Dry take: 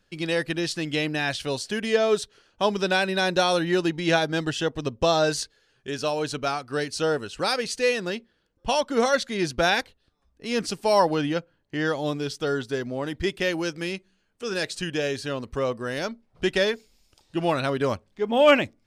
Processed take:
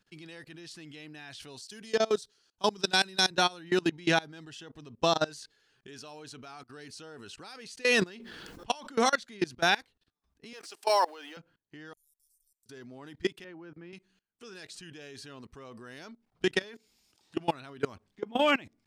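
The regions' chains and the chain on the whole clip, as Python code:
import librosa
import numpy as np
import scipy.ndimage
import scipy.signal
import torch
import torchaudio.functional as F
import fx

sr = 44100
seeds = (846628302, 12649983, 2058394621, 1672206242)

y = fx.chain(x, sr, fx.high_shelf_res(hz=3500.0, db=6.5, q=1.5),
    fx.band_widen(depth_pct=70), at=(1.62, 3.31))
y = fx.chain(y, sr, fx.peak_eq(hz=69.0, db=-4.0, octaves=2.0),
    fx.sustainer(db_per_s=22.0), at=(7.82, 9.14))
y = fx.chain(y, sr, fx.law_mismatch(coded='mu'),
    fx.highpass(hz=440.0, slope=24), at=(10.53, 11.37))
y = fx.chain(y, sr, fx.cheby2_bandstop(low_hz=140.0, high_hz=2400.0, order=4, stop_db=80),
    fx.doubler(ms=18.0, db=-7), at=(11.93, 12.66))
y = fx.chain(y, sr, fx.lowpass(hz=1500.0, slope=12),
    fx.band_widen(depth_pct=100), at=(13.44, 13.93))
y = fx.chain(y, sr, fx.highpass(hz=80.0, slope=6),
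    fx.band_squash(depth_pct=70), at=(16.63, 17.37))
y = fx.peak_eq(y, sr, hz=550.0, db=-9.5, octaves=0.35)
y = fx.level_steps(y, sr, step_db=23)
y = fx.low_shelf(y, sr, hz=72.0, db=-11.0)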